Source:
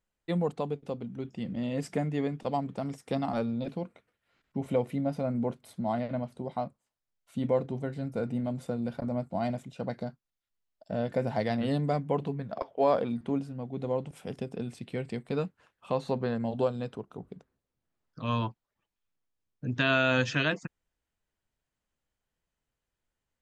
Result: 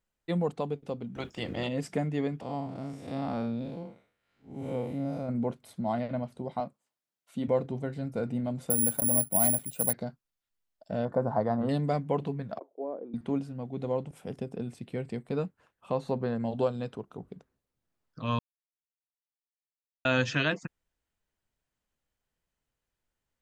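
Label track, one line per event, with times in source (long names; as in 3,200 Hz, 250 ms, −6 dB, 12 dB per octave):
1.150000	1.670000	ceiling on every frequency bin ceiling under each frame's peak by 21 dB
2.410000	5.290000	spectrum smeared in time width 155 ms
6.600000	7.480000	high-pass filter 160 Hz
8.700000	9.930000	bad sample-rate conversion rate divided by 4×, down filtered, up zero stuff
11.050000	11.690000	high shelf with overshoot 1,700 Hz −14 dB, Q 3
12.590000	13.140000	four-pole ladder band-pass 380 Hz, resonance 50%
14.030000	16.390000	parametric band 3,600 Hz −5 dB 2.6 octaves
18.390000	20.050000	silence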